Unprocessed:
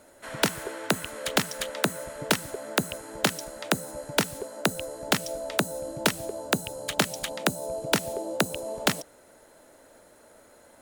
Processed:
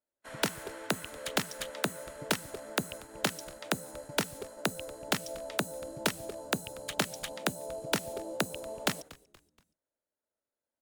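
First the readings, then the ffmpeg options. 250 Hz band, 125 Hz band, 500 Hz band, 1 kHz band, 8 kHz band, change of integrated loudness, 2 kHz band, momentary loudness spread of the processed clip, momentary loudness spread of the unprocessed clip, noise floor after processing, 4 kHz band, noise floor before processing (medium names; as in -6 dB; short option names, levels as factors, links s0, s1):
-6.5 dB, -6.5 dB, -6.5 dB, -6.0 dB, -6.0 dB, -6.0 dB, -6.0 dB, 7 LU, 6 LU, under -85 dBFS, -6.0 dB, -56 dBFS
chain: -filter_complex "[0:a]agate=range=0.0224:threshold=0.00891:ratio=16:detection=peak,aeval=exprs='0.501*(cos(1*acos(clip(val(0)/0.501,-1,1)))-cos(1*PI/2))+0.00562*(cos(7*acos(clip(val(0)/0.501,-1,1)))-cos(7*PI/2))':c=same,asplit=4[s0][s1][s2][s3];[s1]adelay=237,afreqshift=-120,volume=0.0841[s4];[s2]adelay=474,afreqshift=-240,volume=0.0335[s5];[s3]adelay=711,afreqshift=-360,volume=0.0135[s6];[s0][s4][s5][s6]amix=inputs=4:normalize=0,volume=0.501"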